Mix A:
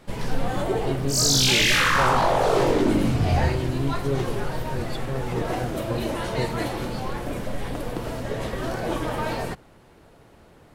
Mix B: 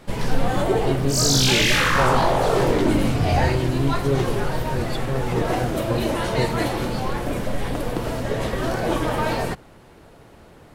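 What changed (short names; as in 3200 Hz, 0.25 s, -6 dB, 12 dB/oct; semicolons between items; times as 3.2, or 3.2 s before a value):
speech +4.0 dB; first sound +4.5 dB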